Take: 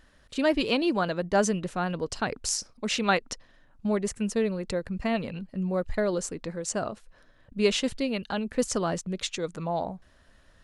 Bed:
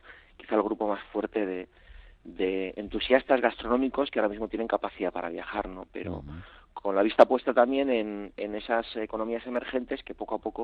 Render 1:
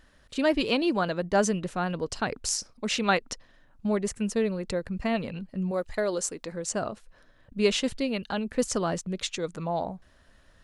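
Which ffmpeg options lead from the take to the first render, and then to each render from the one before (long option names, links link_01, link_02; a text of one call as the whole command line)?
ffmpeg -i in.wav -filter_complex "[0:a]asettb=1/sr,asplit=3[link_01][link_02][link_03];[link_01]atrim=end=5.714[link_04];[link_02]atrim=start=5.71:end=6.52,asetpts=PTS-STARTPTS,afade=type=in:duration=0.004:curve=qsin,afade=type=out:start_time=0.806:duration=0.004:curve=qsin,bass=frequency=250:gain=-9,treble=frequency=4000:gain=5[link_05];[link_03]atrim=start=6.516[link_06];[link_04][link_05]acrossfade=duration=0.004:curve1=hsin:curve2=qsin[link_07];[link_07][link_06]acrossfade=duration=0.004:curve1=qsin:curve2=hsin" out.wav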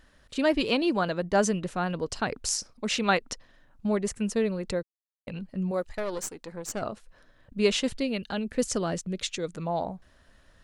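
ffmpeg -i in.wav -filter_complex "[0:a]asettb=1/sr,asplit=3[link_01][link_02][link_03];[link_01]atrim=end=5.894[link_04];[link_02]atrim=start=5.89:end=6.82,asetpts=PTS-STARTPTS,afade=type=in:duration=0.004:curve=qsin,afade=type=out:start_time=0.926:duration=0.004:curve=qsin,aeval=exprs='(tanh(15.8*val(0)+0.75)-tanh(0.75))/15.8':channel_layout=same[link_05];[link_03]atrim=start=6.816[link_06];[link_04][link_05]acrossfade=duration=0.004:curve1=hsin:curve2=qsin[link_07];[link_07][link_06]acrossfade=duration=0.004:curve1=qsin:curve2=hsin,asettb=1/sr,asplit=3[link_08][link_09][link_10];[link_08]atrim=end=8.034[link_11];[link_09]atrim=start=8.03:end=9.67,asetpts=PTS-STARTPTS,afade=type=in:duration=0.004:curve=qsin,afade=type=out:start_time=1.636:duration=0.004:curve=qsin,equalizer=frequency=1000:width=1.5:gain=-5[link_12];[link_10]atrim=start=9.666[link_13];[link_11][link_12]acrossfade=duration=0.004:curve1=hsin:curve2=qsin[link_14];[link_14][link_13]acrossfade=duration=0.004:curve1=qsin:curve2=hsin,asplit=3[link_15][link_16][link_17];[link_15]atrim=end=4.83,asetpts=PTS-STARTPTS,afade=type=out:start_time=4.826:duration=0.004:curve=hsin[link_18];[link_16]atrim=start=4.83:end=5.27,asetpts=PTS-STARTPTS,volume=0[link_19];[link_17]atrim=start=5.27,asetpts=PTS-STARTPTS,afade=type=in:duration=0.004:curve=hsin[link_20];[link_18][link_19][link_20]concat=n=3:v=0:a=1" out.wav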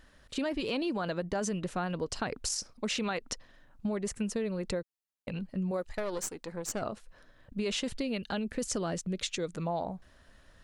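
ffmpeg -i in.wav -af "alimiter=limit=-19.5dB:level=0:latency=1:release=18,acompressor=threshold=-29dB:ratio=6" out.wav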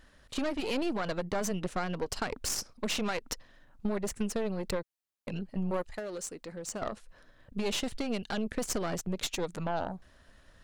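ffmpeg -i in.wav -af "aeval=exprs='0.106*(cos(1*acos(clip(val(0)/0.106,-1,1)))-cos(1*PI/2))+0.015*(cos(6*acos(clip(val(0)/0.106,-1,1)))-cos(6*PI/2))':channel_layout=same" out.wav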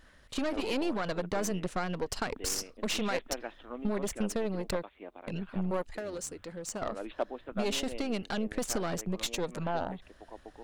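ffmpeg -i in.wav -i bed.wav -filter_complex "[1:a]volume=-16.5dB[link_01];[0:a][link_01]amix=inputs=2:normalize=0" out.wav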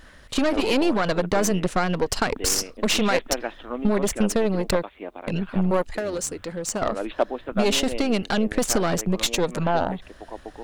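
ffmpeg -i in.wav -af "volume=10.5dB" out.wav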